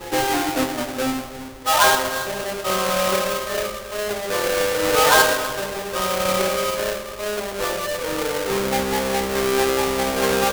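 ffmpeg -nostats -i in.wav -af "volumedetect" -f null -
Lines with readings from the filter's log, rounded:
mean_volume: -21.6 dB
max_volume: -2.6 dB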